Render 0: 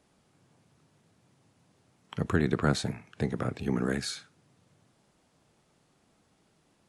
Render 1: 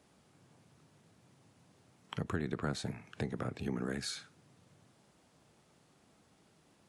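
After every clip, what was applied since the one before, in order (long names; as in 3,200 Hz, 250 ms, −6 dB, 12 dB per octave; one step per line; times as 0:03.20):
high-pass filter 50 Hz
downward compressor 2.5 to 1, threshold −38 dBFS, peak gain reduction 12 dB
level +1 dB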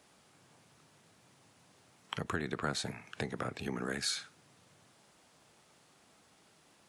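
low-shelf EQ 480 Hz −10 dB
level +6 dB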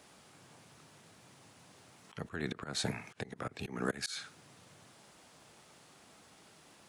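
volume swells 220 ms
level +5 dB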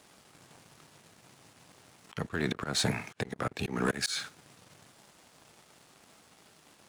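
leveller curve on the samples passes 2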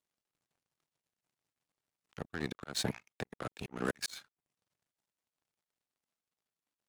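reverb reduction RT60 0.57 s
power curve on the samples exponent 2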